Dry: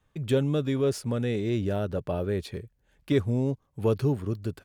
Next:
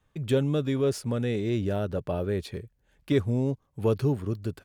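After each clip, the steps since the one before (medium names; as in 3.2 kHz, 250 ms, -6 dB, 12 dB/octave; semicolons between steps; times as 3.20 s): no audible change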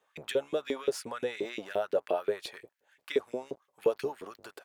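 octave divider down 1 oct, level -4 dB; compression, threshold -25 dBFS, peak gain reduction 8 dB; LFO high-pass saw up 5.7 Hz 380–2600 Hz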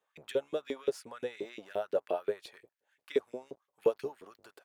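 upward expansion 1.5:1, over -38 dBFS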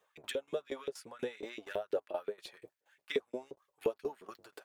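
flange 0.55 Hz, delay 1.6 ms, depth 5.3 ms, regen -41%; compression 2:1, threshold -47 dBFS, peak gain reduction 12 dB; tremolo saw down 4.2 Hz, depth 85%; trim +12 dB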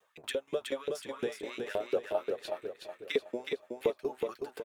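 vibrato 1.4 Hz 50 cents; on a send: feedback delay 370 ms, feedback 41%, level -4.5 dB; on the sum: trim +3 dB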